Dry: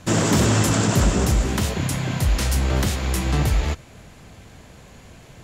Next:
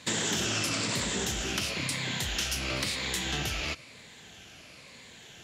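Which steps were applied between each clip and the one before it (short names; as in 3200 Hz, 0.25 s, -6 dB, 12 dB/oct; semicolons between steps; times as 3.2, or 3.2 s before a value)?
moving spectral ripple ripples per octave 0.98, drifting -1 Hz, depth 6 dB; weighting filter D; compressor 3:1, threshold -21 dBFS, peak gain reduction 7.5 dB; gain -7.5 dB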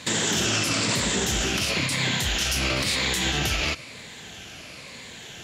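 limiter -23.5 dBFS, peak gain reduction 7.5 dB; gain +9 dB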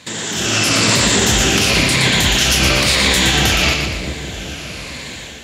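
AGC gain up to 12 dB; on a send: split-band echo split 590 Hz, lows 0.413 s, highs 0.118 s, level -5 dB; on the sum: gain -1.5 dB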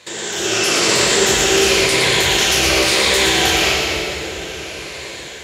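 HPF 56 Hz; resonant low shelf 310 Hz -6 dB, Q 3; plate-style reverb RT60 2.5 s, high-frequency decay 0.9×, DRR 0 dB; gain -3.5 dB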